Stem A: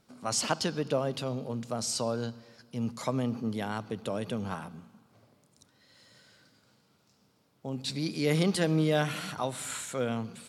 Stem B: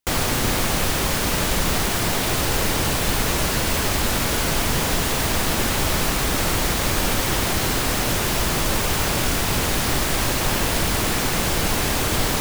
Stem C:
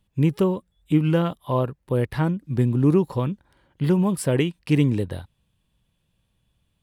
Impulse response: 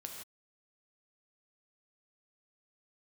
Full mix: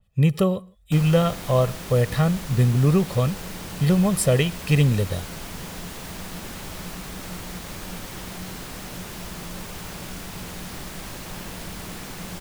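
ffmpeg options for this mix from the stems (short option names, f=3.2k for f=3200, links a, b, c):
-filter_complex "[1:a]equalizer=f=180:w=7.7:g=13.5,adelay=850,volume=-15dB[a];[2:a]aecho=1:1:1.6:0.76,adynamicequalizer=threshold=0.00891:dfrequency=2700:dqfactor=0.7:tfrequency=2700:tqfactor=0.7:attack=5:release=100:ratio=0.375:range=2.5:mode=boostabove:tftype=highshelf,volume=0dB,asplit=2[b][c];[c]volume=-16.5dB[d];[3:a]atrim=start_sample=2205[e];[d][e]afir=irnorm=-1:irlink=0[f];[a][b][f]amix=inputs=3:normalize=0"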